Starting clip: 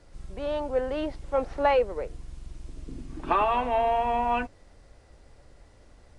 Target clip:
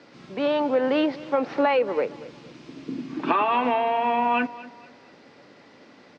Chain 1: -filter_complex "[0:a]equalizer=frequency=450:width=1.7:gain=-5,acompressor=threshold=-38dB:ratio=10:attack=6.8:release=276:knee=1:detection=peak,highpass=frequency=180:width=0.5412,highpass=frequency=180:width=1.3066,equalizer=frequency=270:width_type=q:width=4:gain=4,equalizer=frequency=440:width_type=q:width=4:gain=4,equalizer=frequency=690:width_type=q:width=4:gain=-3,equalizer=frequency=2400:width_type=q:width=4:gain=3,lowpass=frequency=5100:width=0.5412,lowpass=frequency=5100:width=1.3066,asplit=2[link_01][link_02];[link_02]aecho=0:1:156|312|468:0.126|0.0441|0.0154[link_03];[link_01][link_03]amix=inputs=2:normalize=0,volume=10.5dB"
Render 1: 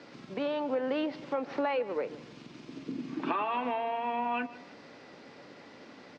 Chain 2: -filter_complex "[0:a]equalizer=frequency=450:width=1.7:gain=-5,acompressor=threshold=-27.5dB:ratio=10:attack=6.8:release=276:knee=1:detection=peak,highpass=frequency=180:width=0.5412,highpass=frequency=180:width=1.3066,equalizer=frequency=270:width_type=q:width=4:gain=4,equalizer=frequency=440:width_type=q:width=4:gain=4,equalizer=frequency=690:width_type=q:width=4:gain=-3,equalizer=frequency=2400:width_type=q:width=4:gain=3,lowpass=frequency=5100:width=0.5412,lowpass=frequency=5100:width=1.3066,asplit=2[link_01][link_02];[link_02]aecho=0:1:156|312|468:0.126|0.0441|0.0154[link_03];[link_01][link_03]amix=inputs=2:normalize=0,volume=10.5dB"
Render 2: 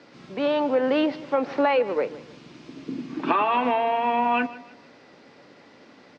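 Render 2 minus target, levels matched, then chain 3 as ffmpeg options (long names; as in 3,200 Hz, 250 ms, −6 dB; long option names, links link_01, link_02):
echo 77 ms early
-filter_complex "[0:a]equalizer=frequency=450:width=1.7:gain=-5,acompressor=threshold=-27.5dB:ratio=10:attack=6.8:release=276:knee=1:detection=peak,highpass=frequency=180:width=0.5412,highpass=frequency=180:width=1.3066,equalizer=frequency=270:width_type=q:width=4:gain=4,equalizer=frequency=440:width_type=q:width=4:gain=4,equalizer=frequency=690:width_type=q:width=4:gain=-3,equalizer=frequency=2400:width_type=q:width=4:gain=3,lowpass=frequency=5100:width=0.5412,lowpass=frequency=5100:width=1.3066,asplit=2[link_01][link_02];[link_02]aecho=0:1:233|466|699:0.126|0.0441|0.0154[link_03];[link_01][link_03]amix=inputs=2:normalize=0,volume=10.5dB"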